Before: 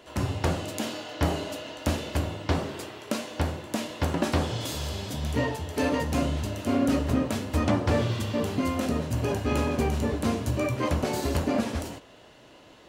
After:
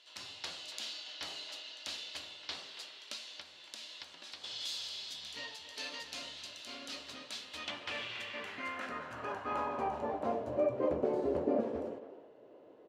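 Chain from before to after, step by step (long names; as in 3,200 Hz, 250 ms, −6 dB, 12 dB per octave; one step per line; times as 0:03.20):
0:03.13–0:04.44: downward compressor 6 to 1, threshold −31 dBFS, peak gain reduction 11 dB
far-end echo of a speakerphone 280 ms, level −10 dB
band-pass filter sweep 4,100 Hz → 450 Hz, 0:07.34–0:10.99
level +1 dB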